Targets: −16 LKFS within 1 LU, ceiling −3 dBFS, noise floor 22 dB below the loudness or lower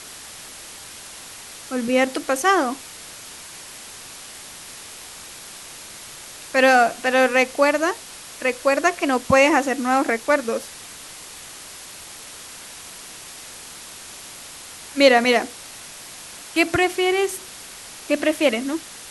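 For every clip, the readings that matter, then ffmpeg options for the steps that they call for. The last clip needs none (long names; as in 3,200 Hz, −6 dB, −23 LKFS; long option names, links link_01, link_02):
background noise floor −39 dBFS; target noise floor −42 dBFS; integrated loudness −19.5 LKFS; sample peak −2.5 dBFS; target loudness −16.0 LKFS
→ -af "afftdn=noise_reduction=6:noise_floor=-39"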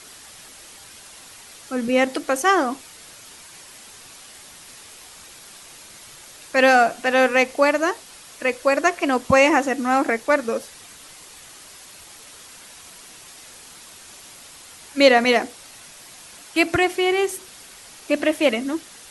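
background noise floor −44 dBFS; integrated loudness −19.5 LKFS; sample peak −2.5 dBFS; target loudness −16.0 LKFS
→ -af "volume=3.5dB,alimiter=limit=-3dB:level=0:latency=1"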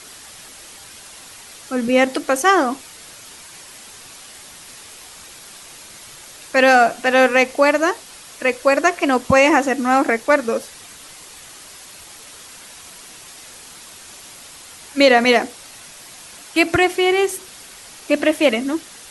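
integrated loudness −16.5 LKFS; sample peak −3.0 dBFS; background noise floor −41 dBFS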